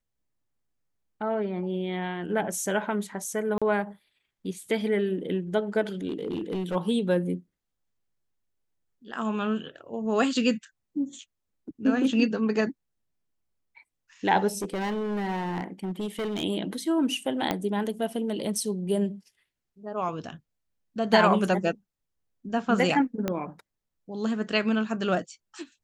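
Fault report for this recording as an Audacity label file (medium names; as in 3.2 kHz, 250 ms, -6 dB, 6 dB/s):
3.580000	3.620000	dropout 36 ms
6.080000	6.760000	clipped -25.5 dBFS
14.580000	16.440000	clipped -26.5 dBFS
17.510000	17.510000	pop -11 dBFS
23.280000	23.280000	pop -13 dBFS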